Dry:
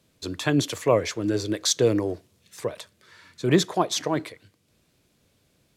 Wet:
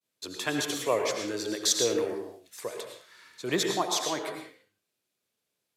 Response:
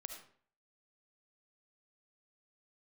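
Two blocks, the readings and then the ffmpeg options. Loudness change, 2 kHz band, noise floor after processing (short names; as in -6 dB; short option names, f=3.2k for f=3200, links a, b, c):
-4.5 dB, -2.0 dB, -83 dBFS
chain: -filter_complex "[0:a]highpass=f=600:p=1,agate=range=-33dB:threshold=-60dB:ratio=3:detection=peak,highshelf=f=11k:g=8[a];[1:a]atrim=start_sample=2205,afade=t=out:st=0.28:d=0.01,atrim=end_sample=12789,asetrate=29106,aresample=44100[b];[a][b]afir=irnorm=-1:irlink=0"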